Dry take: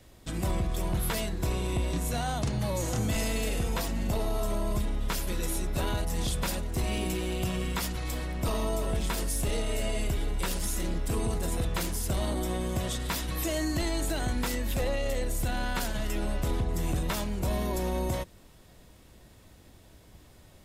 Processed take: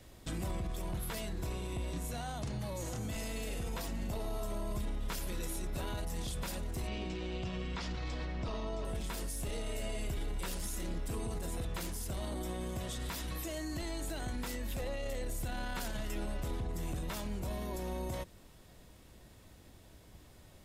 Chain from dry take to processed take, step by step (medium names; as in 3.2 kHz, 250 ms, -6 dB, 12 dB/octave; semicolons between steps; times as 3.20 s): 6.87–8.85 s: low-pass 5.6 kHz 24 dB/octave; peak limiter -27.5 dBFS, peak gain reduction 8 dB; gain riding within 3 dB 0.5 s; trim -3 dB